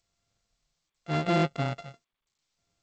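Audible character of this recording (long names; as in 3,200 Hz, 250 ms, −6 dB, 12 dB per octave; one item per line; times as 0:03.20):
a buzz of ramps at a fixed pitch in blocks of 64 samples
tremolo triangle 0.82 Hz, depth 100%
G.722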